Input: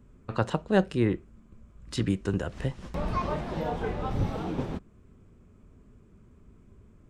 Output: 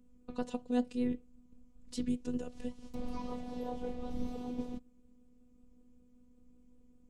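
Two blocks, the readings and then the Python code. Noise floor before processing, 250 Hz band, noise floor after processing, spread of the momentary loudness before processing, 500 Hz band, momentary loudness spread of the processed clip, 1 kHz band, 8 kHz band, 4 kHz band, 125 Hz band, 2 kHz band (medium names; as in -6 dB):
-57 dBFS, -5.0 dB, -63 dBFS, 10 LU, -10.5 dB, 10 LU, -12.5 dB, -6.5 dB, -11.0 dB, -19.5 dB, -17.5 dB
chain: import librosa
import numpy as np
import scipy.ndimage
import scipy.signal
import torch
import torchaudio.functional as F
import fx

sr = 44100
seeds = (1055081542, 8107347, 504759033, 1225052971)

y = fx.peak_eq(x, sr, hz=1500.0, db=-14.5, octaves=1.7)
y = fx.vibrato(y, sr, rate_hz=5.2, depth_cents=94.0)
y = fx.robotise(y, sr, hz=246.0)
y = y * 10.0 ** (-3.5 / 20.0)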